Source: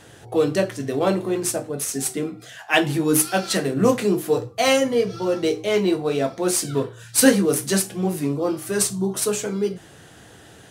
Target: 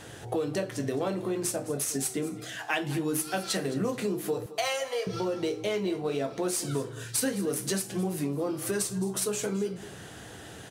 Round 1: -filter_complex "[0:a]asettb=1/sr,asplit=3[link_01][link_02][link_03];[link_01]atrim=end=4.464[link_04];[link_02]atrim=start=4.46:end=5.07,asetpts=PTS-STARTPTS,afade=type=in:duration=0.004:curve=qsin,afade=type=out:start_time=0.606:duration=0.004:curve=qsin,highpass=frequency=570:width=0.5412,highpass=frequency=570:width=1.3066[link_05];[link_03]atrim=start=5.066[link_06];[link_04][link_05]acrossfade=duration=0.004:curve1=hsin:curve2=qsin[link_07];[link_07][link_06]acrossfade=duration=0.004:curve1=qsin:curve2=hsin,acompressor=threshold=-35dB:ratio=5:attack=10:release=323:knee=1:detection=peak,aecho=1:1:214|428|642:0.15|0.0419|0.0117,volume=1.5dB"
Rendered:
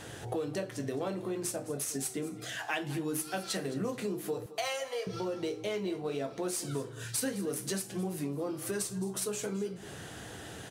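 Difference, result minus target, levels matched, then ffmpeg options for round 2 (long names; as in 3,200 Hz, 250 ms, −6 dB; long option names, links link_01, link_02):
downward compressor: peak gain reduction +5 dB
-filter_complex "[0:a]asettb=1/sr,asplit=3[link_01][link_02][link_03];[link_01]atrim=end=4.464[link_04];[link_02]atrim=start=4.46:end=5.07,asetpts=PTS-STARTPTS,afade=type=in:duration=0.004:curve=qsin,afade=type=out:start_time=0.606:duration=0.004:curve=qsin,highpass=frequency=570:width=0.5412,highpass=frequency=570:width=1.3066[link_05];[link_03]atrim=start=5.066[link_06];[link_04][link_05]acrossfade=duration=0.004:curve1=hsin:curve2=qsin[link_07];[link_07][link_06]acrossfade=duration=0.004:curve1=qsin:curve2=hsin,acompressor=threshold=-29dB:ratio=5:attack=10:release=323:knee=1:detection=peak,aecho=1:1:214|428|642:0.15|0.0419|0.0117,volume=1.5dB"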